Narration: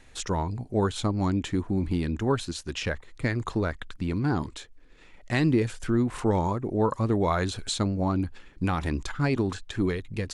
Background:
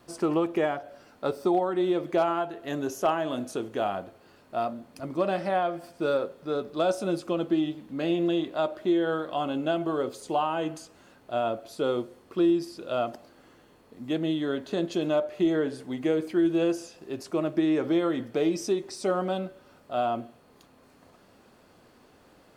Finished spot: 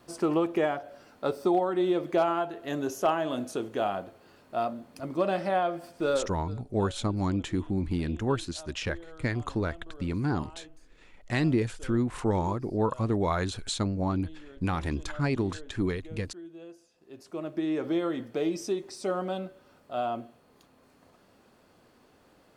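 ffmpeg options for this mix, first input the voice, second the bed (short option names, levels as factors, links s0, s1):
-filter_complex "[0:a]adelay=6000,volume=0.75[s0];[1:a]volume=7.5,afade=t=out:st=6.11:d=0.44:silence=0.0891251,afade=t=in:st=16.88:d=1:silence=0.125893[s1];[s0][s1]amix=inputs=2:normalize=0"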